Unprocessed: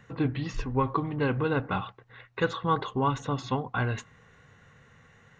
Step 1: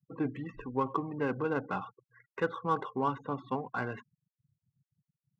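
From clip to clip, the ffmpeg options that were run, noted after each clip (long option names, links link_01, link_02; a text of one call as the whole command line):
ffmpeg -i in.wav -filter_complex "[0:a]afftfilt=real='re*gte(hypot(re,im),0.0126)':imag='im*gte(hypot(re,im),0.0126)':win_size=1024:overlap=0.75,acrossover=split=160 2700:gain=0.112 1 0.224[link_01][link_02][link_03];[link_01][link_02][link_03]amix=inputs=3:normalize=0,adynamicsmooth=sensitivity=4.5:basefreq=3200,volume=-3.5dB" out.wav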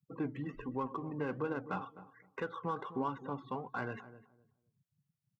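ffmpeg -i in.wav -filter_complex "[0:a]alimiter=level_in=1dB:limit=-24dB:level=0:latency=1:release=189,volume=-1dB,flanger=delay=2.9:depth=4.6:regen=81:speed=1.3:shape=triangular,asplit=2[link_01][link_02];[link_02]adelay=256,lowpass=frequency=870:poles=1,volume=-13.5dB,asplit=2[link_03][link_04];[link_04]adelay=256,lowpass=frequency=870:poles=1,volume=0.22,asplit=2[link_05][link_06];[link_06]adelay=256,lowpass=frequency=870:poles=1,volume=0.22[link_07];[link_01][link_03][link_05][link_07]amix=inputs=4:normalize=0,volume=3dB" out.wav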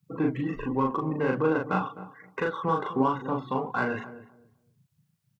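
ffmpeg -i in.wav -filter_complex "[0:a]asplit=2[link_01][link_02];[link_02]adelay=38,volume=-2dB[link_03];[link_01][link_03]amix=inputs=2:normalize=0,volume=9dB" out.wav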